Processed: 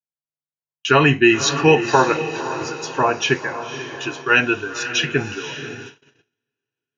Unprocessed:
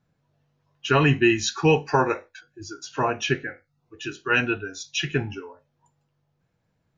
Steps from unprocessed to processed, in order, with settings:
on a send: feedback delay with all-pass diffusion 528 ms, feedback 46%, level −10.5 dB
on the sum: noise gate −39 dBFS, range −41 dB
low-shelf EQ 150 Hz −9.5 dB
level +6.5 dB

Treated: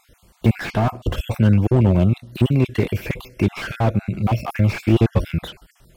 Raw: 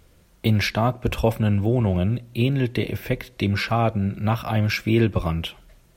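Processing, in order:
time-frequency cells dropped at random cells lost 38%
slew-rate limiting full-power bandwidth 45 Hz
level +6 dB

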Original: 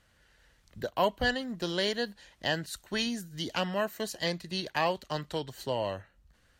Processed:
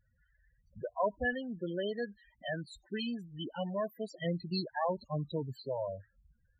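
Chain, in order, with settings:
spectral peaks only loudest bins 8
0:04.14–0:05.61: octave-band graphic EQ 125/250/4,000/8,000 Hz +8/+4/+5/+7 dB
level −3 dB

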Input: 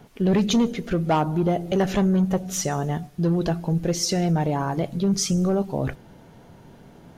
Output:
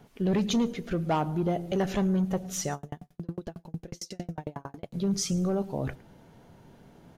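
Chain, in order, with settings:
slap from a distant wall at 19 metres, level −23 dB
0:02.74–0:04.94: tremolo with a ramp in dB decaying 11 Hz, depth 39 dB
level −6 dB

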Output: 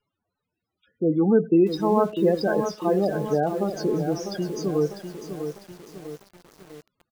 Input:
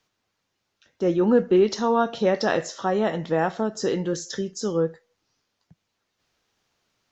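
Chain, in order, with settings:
pitch shifter −1.5 semitones
spectral peaks only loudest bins 16
feedback echo at a low word length 649 ms, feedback 55%, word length 7 bits, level −8 dB

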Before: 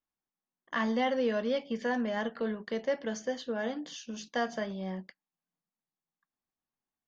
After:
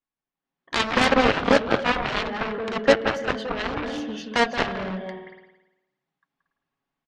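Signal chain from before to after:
low-pass filter 3,500 Hz 12 dB per octave
comb filter 7.2 ms, depth 39%
on a send at −3 dB: convolution reverb RT60 1.0 s, pre-delay 174 ms
on the sum: harmonic generator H 7 −11 dB, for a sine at −15.5 dBFS
automatic gain control gain up to 10 dB

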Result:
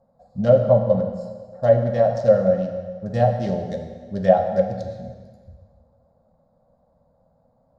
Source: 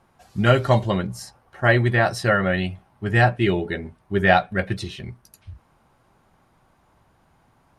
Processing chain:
adaptive Wiener filter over 15 samples
drawn EQ curve 140 Hz 0 dB, 220 Hz +6 dB, 370 Hz −15 dB, 530 Hz +15 dB, 900 Hz −5 dB, 1,500 Hz −12 dB, 2,500 Hz −14 dB, 3,900 Hz 0 dB, 5,900 Hz +5 dB, 10,000 Hz −2 dB
treble cut that deepens with the level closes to 1,500 Hz, closed at −8.5 dBFS
hum removal 46.06 Hz, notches 2
convolution reverb RT60 1.6 s, pre-delay 5 ms, DRR 4.5 dB
level −4.5 dB

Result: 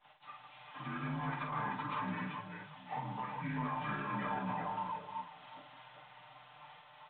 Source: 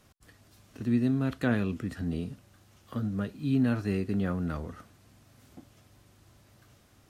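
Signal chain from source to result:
partials spread apart or drawn together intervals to 80%
downward expander −60 dBFS
high-pass filter 150 Hz 24 dB per octave
low shelf with overshoot 560 Hz −12 dB, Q 3
comb filter 6.7 ms, depth 92%
compressor whose output falls as the input rises −34 dBFS, ratio −0.5
brickwall limiter −33 dBFS, peak gain reduction 9 dB
hard clipping −36 dBFS, distortion −21 dB
multi-tap delay 48/158/388/390/754 ms −5.5/−9/−7/−5.5/−17 dB
level +2.5 dB
mu-law 64 kbit/s 8,000 Hz

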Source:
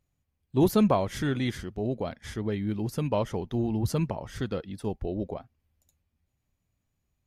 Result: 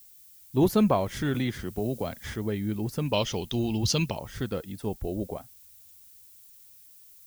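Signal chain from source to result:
0:03.13–0:04.19: flat-topped bell 4,100 Hz +15 dB
background noise violet −53 dBFS
0:01.34–0:02.36: multiband upward and downward compressor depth 70%

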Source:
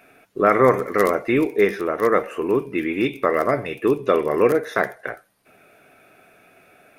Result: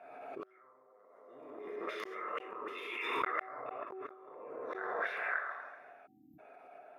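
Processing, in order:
time-frequency cells dropped at random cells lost 20%
0:02.56–0:03.17: first-order pre-emphasis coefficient 0.97
echo through a band-pass that steps 136 ms, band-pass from 340 Hz, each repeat 0.7 octaves, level −3 dB
reverb whose tail is shaped and stops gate 440 ms falling, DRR −1.5 dB
gate with flip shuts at −8 dBFS, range −42 dB
0:01.09–0:01.76: high-shelf EQ 3,600 Hz +11.5 dB
0:06.07–0:06.39: time-frequency box erased 340–12,000 Hz
hum removal 378.6 Hz, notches 2
0:03.83–0:04.87: compressor whose output falls as the input rises −29 dBFS, ratio −0.5
envelope filter 720–3,700 Hz, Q 2.3, up, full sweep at −19 dBFS
background raised ahead of every attack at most 31 dB per second
level −1.5 dB

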